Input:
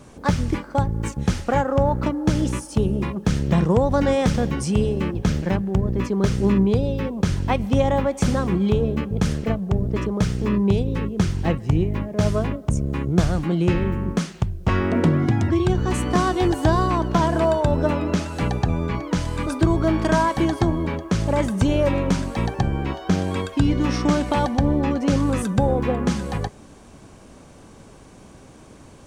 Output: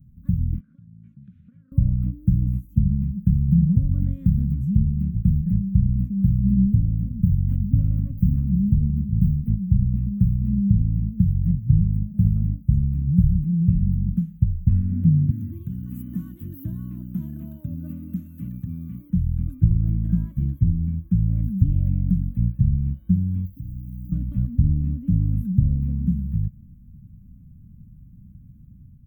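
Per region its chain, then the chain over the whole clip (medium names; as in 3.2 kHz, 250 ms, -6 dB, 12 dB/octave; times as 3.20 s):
0.60–1.72 s: compression 12:1, threshold -32 dBFS + cabinet simulation 240–4600 Hz, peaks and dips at 290 Hz -5 dB, 560 Hz -5 dB, 860 Hz -9 dB, 1.5 kHz +8 dB, 2.4 kHz +6 dB, 3.6 kHz +6 dB
6.66–9.46 s: delay 367 ms -14.5 dB + sliding maximum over 9 samples
15.30–19.10 s: high-pass 200 Hz + treble shelf 9.3 kHz +10.5 dB + comb 3.4 ms, depth 49%
23.45–24.12 s: peaking EQ 1.4 kHz -12 dB 2.6 oct + compression 16:1, threshold -30 dBFS + sample-rate reducer 5.3 kHz, jitter 20%
whole clip: inverse Chebyshev band-stop 360–9700 Hz, stop band 40 dB; level rider gain up to 4.5 dB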